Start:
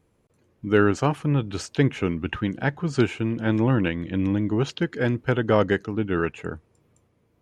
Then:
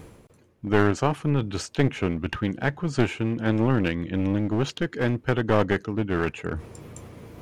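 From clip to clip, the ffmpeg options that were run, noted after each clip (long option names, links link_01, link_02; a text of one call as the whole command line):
ffmpeg -i in.wav -af "areverse,acompressor=mode=upward:threshold=-23dB:ratio=2.5,areverse,aeval=exprs='clip(val(0),-1,0.0531)':channel_layout=same" out.wav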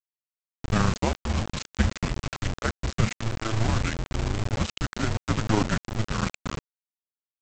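ffmpeg -i in.wav -af "afreqshift=-220,tremolo=f=26:d=0.519,aresample=16000,acrusher=bits=4:mix=0:aa=0.000001,aresample=44100" out.wav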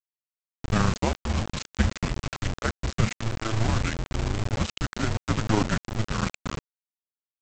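ffmpeg -i in.wav -af anull out.wav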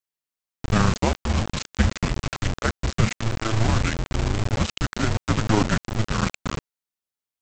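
ffmpeg -i in.wav -af "acontrast=65,volume=-2.5dB" out.wav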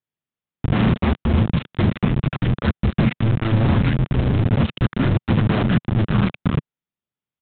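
ffmpeg -i in.wav -af "aresample=8000,aeval=exprs='0.119*(abs(mod(val(0)/0.119+3,4)-2)-1)':channel_layout=same,aresample=44100,equalizer=frequency=150:width_type=o:width=2.1:gain=13" out.wav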